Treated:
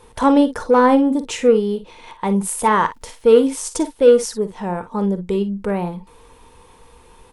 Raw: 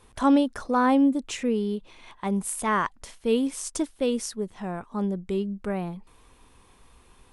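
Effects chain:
hollow resonant body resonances 480/900 Hz, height 13 dB, ringing for 65 ms
in parallel at −5 dB: soft clipping −17.5 dBFS, distortion −11 dB
0:02.84–0:03.29: on the sum: surface crackle 160 per second −51 dBFS
ambience of single reflections 45 ms −14 dB, 56 ms −14 dB
level +2.5 dB

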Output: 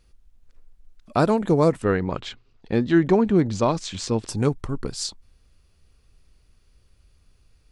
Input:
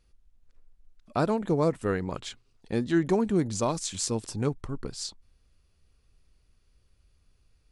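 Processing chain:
0:01.82–0:04.29: low-pass filter 4,000 Hz 12 dB per octave
level +6.5 dB

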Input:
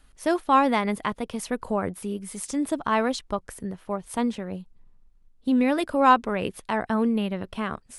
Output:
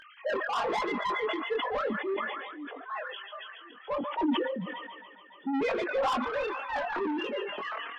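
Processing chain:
three sine waves on the formant tracks
gate on every frequency bin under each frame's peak −20 dB strong
0:02.14–0:03.83: first difference
on a send: delay with a high-pass on its return 141 ms, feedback 74%, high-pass 1,900 Hz, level −7 dB
on the sum: upward compression, threshold −42 dBFS
in parallel at +3 dB: brickwall limiter −20 dBFS, peak gain reduction 12 dB
on the sum: chorus effect 1.2 Hz, delay 20 ms, depth 3.1 ms
soft clipping −22 dBFS, distortion −7 dB
flanger 0.47 Hz, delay 3.2 ms, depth 1.9 ms, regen +30%
level that may fall only so fast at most 35 dB per second

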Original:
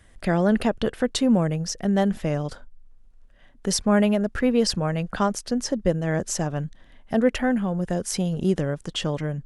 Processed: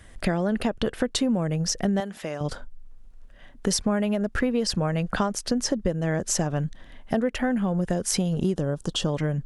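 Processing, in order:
downward compressor 10 to 1, threshold −26 dBFS, peak gain reduction 12.5 dB
0:02.00–0:02.41: high-pass filter 660 Hz 6 dB per octave
0:08.55–0:09.08: parametric band 2,100 Hz −15 dB 0.54 octaves
level +5.5 dB

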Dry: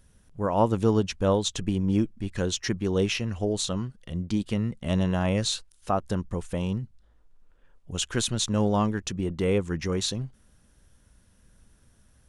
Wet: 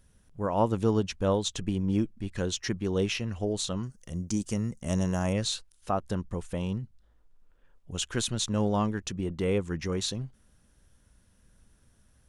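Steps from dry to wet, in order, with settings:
0:03.83–0:05.33: high shelf with overshoot 4,800 Hz +9 dB, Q 3
level −3 dB

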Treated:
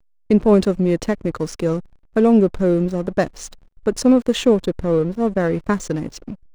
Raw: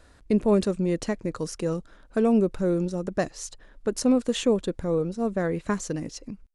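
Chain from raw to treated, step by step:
high-shelf EQ 8,200 Hz −7.5 dB
slack as between gear wheels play −38.5 dBFS
level +7.5 dB

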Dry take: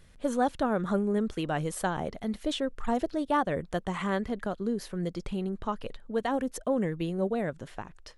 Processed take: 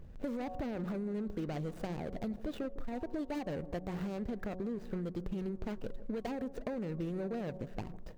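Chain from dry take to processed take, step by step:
running median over 41 samples
parametric band 10,000 Hz −5.5 dB 0.4 octaves
hum removal 184.9 Hz, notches 6
brickwall limiter −30 dBFS, peak gain reduction 11 dB
downward compressor 6 to 1, threshold −42 dBFS, peak gain reduction 9.5 dB
delay with a low-pass on its return 156 ms, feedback 58%, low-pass 790 Hz, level −15.5 dB
level +7 dB

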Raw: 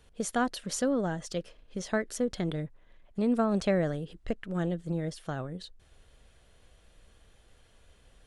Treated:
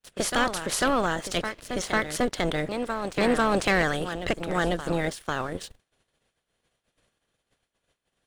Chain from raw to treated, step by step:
ceiling on every frequency bin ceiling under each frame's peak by 21 dB
backwards echo 496 ms −9.5 dB
downward expander −46 dBFS
leveller curve on the samples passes 2
level −1 dB

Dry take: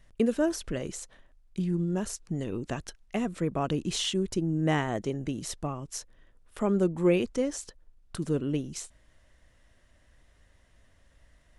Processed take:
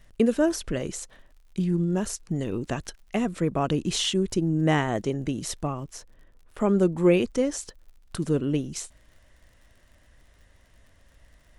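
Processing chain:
0:05.83–0:06.60: high-shelf EQ 2,600 Hz −10 dB
surface crackle 57 per second −52 dBFS
level +4 dB

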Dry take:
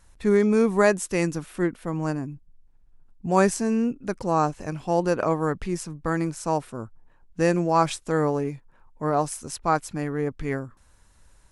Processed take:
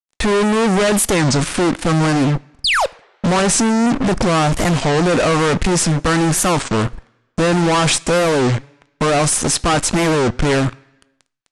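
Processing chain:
0:03.86–0:04.59: tilt shelving filter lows +4 dB, about 750 Hz
in parallel at −3 dB: compressor whose output falls as the input rises −29 dBFS, ratio −1
0:02.64–0:02.88: on the sum: sound drawn into the spectrogram fall 400–5,300 Hz −31 dBFS
fuzz pedal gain 41 dB, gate −38 dBFS
on a send at −17 dB: convolution reverb RT60 1.0 s, pre-delay 3 ms
on the sum: downsampling to 22,050 Hz
wow of a warped record 33 1/3 rpm, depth 250 cents

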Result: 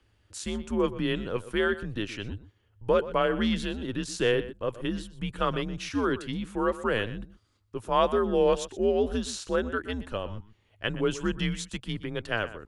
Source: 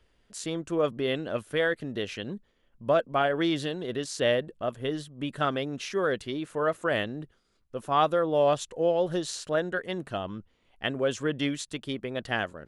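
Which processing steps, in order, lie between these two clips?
frequency shifter −110 Hz
slap from a distant wall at 21 metres, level −15 dB

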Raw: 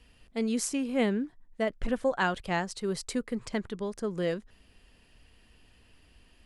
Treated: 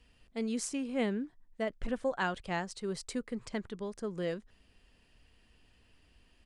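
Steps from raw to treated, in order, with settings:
downsampling to 22,050 Hz
level −5 dB

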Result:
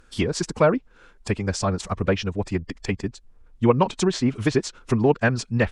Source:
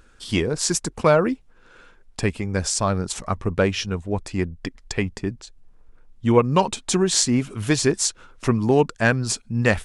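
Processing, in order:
treble cut that deepens with the level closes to 3,000 Hz, closed at −16 dBFS
phase-vocoder stretch with locked phases 0.58×

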